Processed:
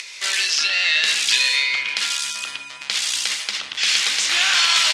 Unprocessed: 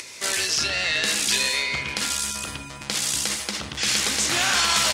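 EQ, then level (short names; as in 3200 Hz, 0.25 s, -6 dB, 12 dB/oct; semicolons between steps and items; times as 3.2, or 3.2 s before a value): band-pass 3000 Hz, Q 0.97; +7.0 dB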